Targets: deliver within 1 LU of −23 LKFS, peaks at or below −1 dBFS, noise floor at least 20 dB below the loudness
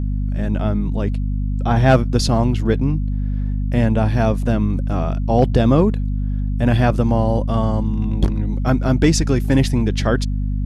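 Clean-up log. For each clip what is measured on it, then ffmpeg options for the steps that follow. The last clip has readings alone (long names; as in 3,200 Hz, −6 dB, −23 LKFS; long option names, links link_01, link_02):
mains hum 50 Hz; hum harmonics up to 250 Hz; level of the hum −18 dBFS; integrated loudness −18.5 LKFS; sample peak −3.0 dBFS; target loudness −23.0 LKFS
→ -af "bandreject=frequency=50:width_type=h:width=4,bandreject=frequency=100:width_type=h:width=4,bandreject=frequency=150:width_type=h:width=4,bandreject=frequency=200:width_type=h:width=4,bandreject=frequency=250:width_type=h:width=4"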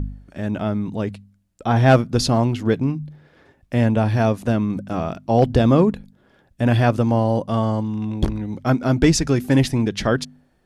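mains hum none found; integrated loudness −20.0 LKFS; sample peak −4.5 dBFS; target loudness −23.0 LKFS
→ -af "volume=-3dB"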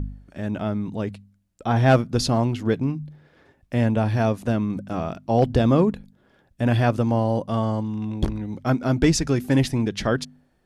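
integrated loudness −23.0 LKFS; sample peak −7.5 dBFS; background noise floor −63 dBFS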